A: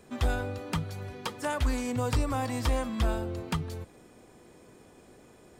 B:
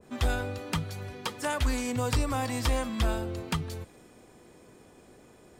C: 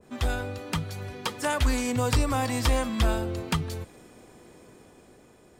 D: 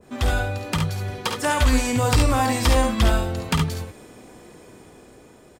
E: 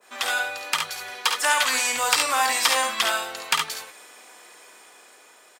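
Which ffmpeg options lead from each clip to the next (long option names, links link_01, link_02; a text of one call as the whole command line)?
ffmpeg -i in.wav -af "adynamicequalizer=threshold=0.00501:dfrequency=1600:dqfactor=0.7:tfrequency=1600:tqfactor=0.7:attack=5:release=100:ratio=0.375:range=2:mode=boostabove:tftype=highshelf" out.wav
ffmpeg -i in.wav -af "dynaudnorm=framelen=210:gausssize=9:maxgain=3.5dB" out.wav
ffmpeg -i in.wav -af "aecho=1:1:51|70:0.398|0.531,volume=4.5dB" out.wav
ffmpeg -i in.wav -af "highpass=1100,volume=5.5dB" out.wav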